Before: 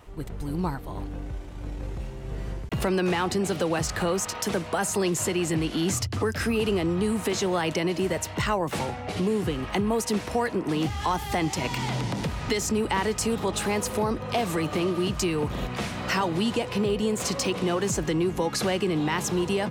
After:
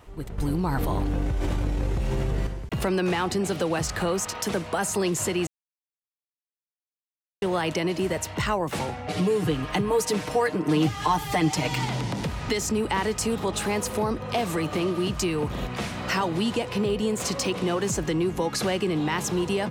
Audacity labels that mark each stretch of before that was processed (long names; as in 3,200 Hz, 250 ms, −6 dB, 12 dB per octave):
0.380000	2.470000	envelope flattener amount 100%
5.470000	7.420000	silence
9.080000	11.850000	comb filter 6.6 ms, depth 80%